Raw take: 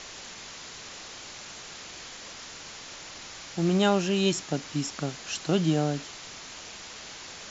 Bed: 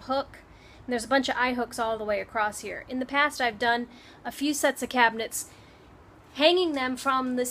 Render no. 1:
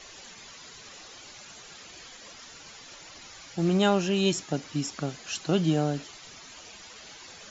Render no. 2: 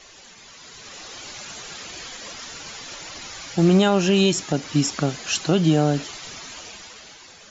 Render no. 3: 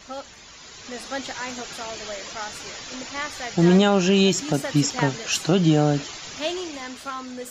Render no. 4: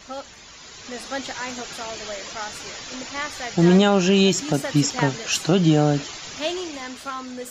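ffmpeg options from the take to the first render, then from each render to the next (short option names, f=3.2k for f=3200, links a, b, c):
-af "afftdn=nr=11:nf=-44"
-af "alimiter=limit=-18.5dB:level=0:latency=1:release=204,dynaudnorm=f=140:g=13:m=10dB"
-filter_complex "[1:a]volume=-7.5dB[a];[0:a][a]amix=inputs=2:normalize=0"
-af "volume=1dB"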